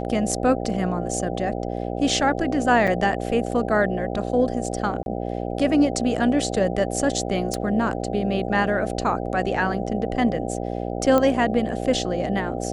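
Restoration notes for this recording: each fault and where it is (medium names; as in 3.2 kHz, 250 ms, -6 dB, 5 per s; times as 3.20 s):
buzz 60 Hz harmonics 13 -28 dBFS
2.87–2.88 s: dropout 5.9 ms
5.03–5.06 s: dropout 31 ms
7.54 s: pop -14 dBFS
11.18 s: pop -8 dBFS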